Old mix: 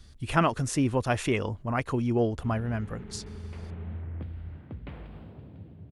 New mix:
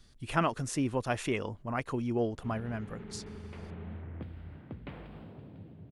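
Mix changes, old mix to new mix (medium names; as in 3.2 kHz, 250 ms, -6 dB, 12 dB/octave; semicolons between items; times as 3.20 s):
speech -4.5 dB; master: add peaking EQ 66 Hz -10 dB 1.1 oct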